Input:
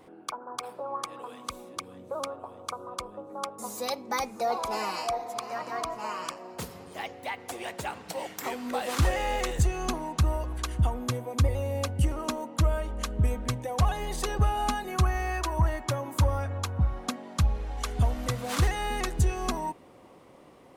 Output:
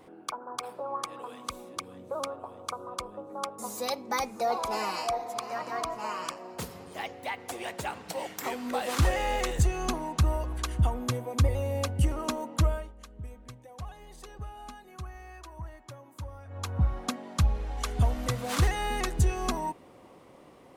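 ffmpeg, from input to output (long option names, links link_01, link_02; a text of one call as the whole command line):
ffmpeg -i in.wav -filter_complex "[0:a]asplit=3[link_01][link_02][link_03];[link_01]atrim=end=12.93,asetpts=PTS-STARTPTS,afade=type=out:start_time=12.62:duration=0.31:silence=0.149624[link_04];[link_02]atrim=start=12.93:end=16.45,asetpts=PTS-STARTPTS,volume=-16.5dB[link_05];[link_03]atrim=start=16.45,asetpts=PTS-STARTPTS,afade=type=in:duration=0.31:silence=0.149624[link_06];[link_04][link_05][link_06]concat=n=3:v=0:a=1" out.wav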